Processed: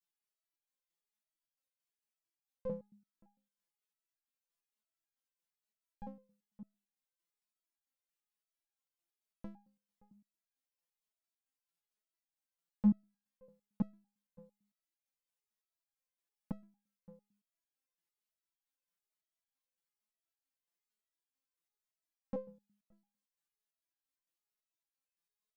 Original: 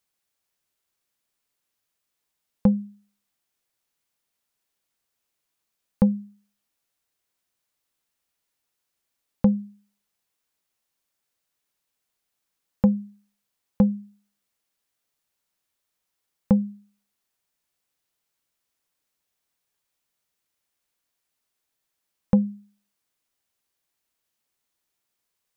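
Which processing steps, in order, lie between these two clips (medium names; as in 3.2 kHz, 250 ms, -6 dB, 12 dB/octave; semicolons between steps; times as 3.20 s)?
echo from a far wall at 98 m, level -22 dB; resonator arpeggio 8.9 Hz 170–810 Hz; trim -2 dB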